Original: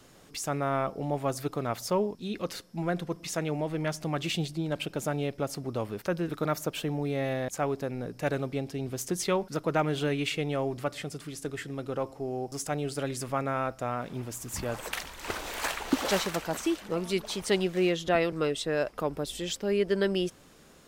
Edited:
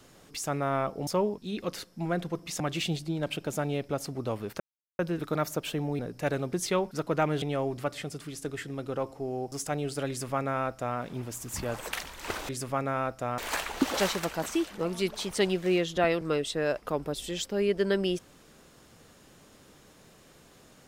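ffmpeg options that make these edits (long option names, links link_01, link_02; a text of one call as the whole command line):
ffmpeg -i in.wav -filter_complex "[0:a]asplit=9[link_01][link_02][link_03][link_04][link_05][link_06][link_07][link_08][link_09];[link_01]atrim=end=1.072[link_10];[link_02]atrim=start=1.838:end=3.372[link_11];[link_03]atrim=start=4.088:end=6.09,asetpts=PTS-STARTPTS,afade=type=out:start_time=1.998:duration=0.004:curve=hsin,apad=pad_dur=0.39[link_12];[link_04]atrim=start=6.09:end=7.092,asetpts=PTS-STARTPTS,afade=type=in:duration=0.004:curve=hsin[link_13];[link_05]atrim=start=7.988:end=8.532[link_14];[link_06]atrim=start=9.098:end=9.992[link_15];[link_07]atrim=start=10.418:end=15.492[link_16];[link_08]atrim=start=13.088:end=13.982[link_17];[link_09]atrim=start=15.488[link_18];[link_10][link_11]acrossfade=duration=0.004:curve1=hsin:curve2=hsin[link_19];[link_12][link_13]concat=n=2:v=0:a=1[link_20];[link_19][link_20]acrossfade=duration=0.004:curve1=hsin:curve2=hsin[link_21];[link_21][link_14]acrossfade=duration=0.004:curve1=hsin:curve2=hsin[link_22];[link_22][link_15]acrossfade=duration=0.004:curve1=hsin:curve2=hsin[link_23];[link_23][link_16]acrossfade=duration=0.004:curve1=hsin:curve2=hsin[link_24];[link_24][link_17]acrossfade=duration=0.004:curve1=hsin:curve2=hsin[link_25];[link_25][link_18]acrossfade=duration=0.004:curve1=hsin:curve2=hsin" out.wav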